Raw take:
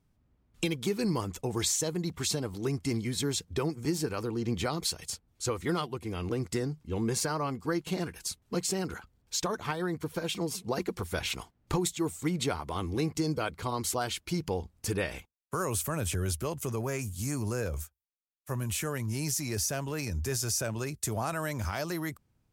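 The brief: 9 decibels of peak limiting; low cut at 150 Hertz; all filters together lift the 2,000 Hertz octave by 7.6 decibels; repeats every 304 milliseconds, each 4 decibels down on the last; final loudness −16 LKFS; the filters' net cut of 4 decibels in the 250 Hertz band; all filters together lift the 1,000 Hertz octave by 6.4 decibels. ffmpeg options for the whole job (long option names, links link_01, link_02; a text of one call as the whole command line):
ffmpeg -i in.wav -af "highpass=150,equalizer=frequency=250:width_type=o:gain=-5.5,equalizer=frequency=1000:width_type=o:gain=6,equalizer=frequency=2000:width_type=o:gain=8,alimiter=limit=-22dB:level=0:latency=1,aecho=1:1:304|608|912|1216|1520|1824|2128|2432|2736:0.631|0.398|0.25|0.158|0.0994|0.0626|0.0394|0.0249|0.0157,volume=15.5dB" out.wav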